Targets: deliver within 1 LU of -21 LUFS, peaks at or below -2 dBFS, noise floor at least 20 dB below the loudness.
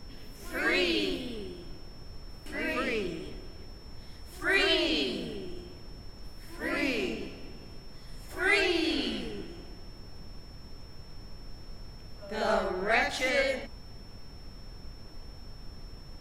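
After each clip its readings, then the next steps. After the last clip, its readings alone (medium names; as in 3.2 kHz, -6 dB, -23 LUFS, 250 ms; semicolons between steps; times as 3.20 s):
steady tone 5.4 kHz; tone level -55 dBFS; noise floor -48 dBFS; noise floor target -50 dBFS; loudness -29.5 LUFS; peak level -11.5 dBFS; loudness target -21.0 LUFS
-> band-stop 5.4 kHz, Q 30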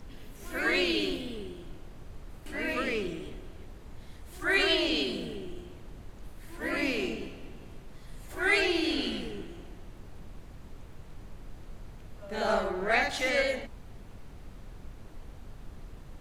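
steady tone not found; noise floor -48 dBFS; noise floor target -50 dBFS
-> noise print and reduce 6 dB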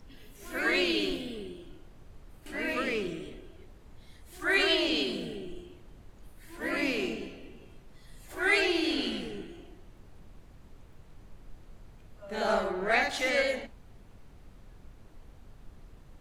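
noise floor -54 dBFS; loudness -29.5 LUFS; peak level -11.5 dBFS; loudness target -21.0 LUFS
-> trim +8.5 dB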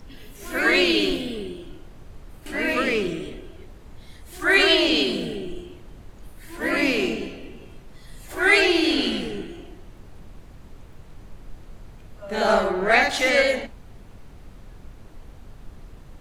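loudness -21.0 LUFS; peak level -3.0 dBFS; noise floor -46 dBFS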